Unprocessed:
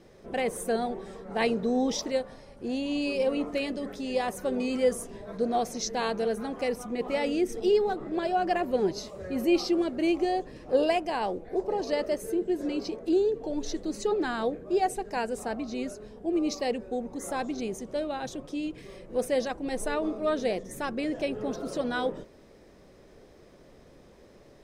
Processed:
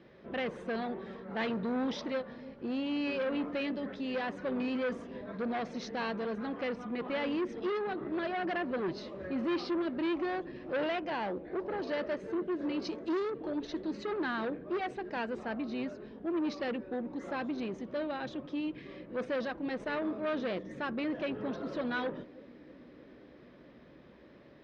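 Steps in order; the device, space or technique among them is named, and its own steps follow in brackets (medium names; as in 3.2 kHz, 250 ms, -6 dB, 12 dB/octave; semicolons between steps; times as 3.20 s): analogue delay pedal into a guitar amplifier (bucket-brigade echo 318 ms, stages 1024, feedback 82%, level -21 dB; valve stage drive 27 dB, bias 0.25; cabinet simulation 76–3800 Hz, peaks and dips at 97 Hz -9 dB, 440 Hz -5 dB, 750 Hz -5 dB, 1.7 kHz +3 dB); 12.82–13.30 s: peaking EQ 6.7 kHz +14 dB 0.97 oct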